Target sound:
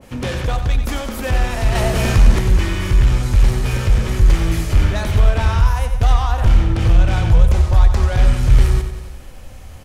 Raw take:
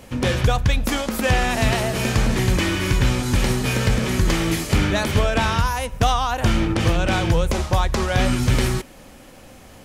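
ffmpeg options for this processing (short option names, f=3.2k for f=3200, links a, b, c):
-filter_complex "[0:a]asoftclip=type=tanh:threshold=-16dB,asubboost=boost=6:cutoff=91,asettb=1/sr,asplit=3[a][b][c];[a]atrim=end=1.754[d];[b]atrim=start=1.75:end=2.39,asetpts=PTS-STARTPTS,afade=t=in:d=0.004:c=qsin,afade=t=out:st=0.636:d=0.004:c=qsin,acontrast=38[e];[c]atrim=start=2.386[f];[d][e]acrossfade=d=0.004:c1=hsin:c2=qsin[g];[g][f]acrossfade=d=0.004:c1=qsin:c2=hsin,aecho=1:1:91|182|273|364|455|546|637:0.355|0.199|0.111|0.0623|0.0349|0.0195|0.0109,adynamicequalizer=threshold=0.0112:dfrequency=1800:dqfactor=0.7:tfrequency=1800:tqfactor=0.7:attack=5:release=100:ratio=0.375:range=1.5:mode=cutabove:tftype=highshelf"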